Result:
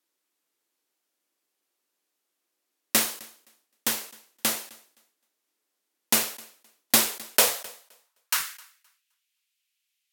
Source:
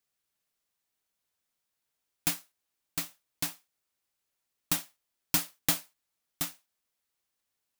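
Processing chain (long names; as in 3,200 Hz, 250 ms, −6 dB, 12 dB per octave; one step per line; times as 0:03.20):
high-pass filter sweep 400 Hz → 3,400 Hz, 0:05.41–0:06.96
on a send: feedback echo with a high-pass in the loop 200 ms, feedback 20%, high-pass 200 Hz, level −20.5 dB
on the sum: speed change −23%
in parallel at −5.5 dB: bit reduction 6 bits
on the sum: level that may fall only so fast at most 120 dB per second
level +2.5 dB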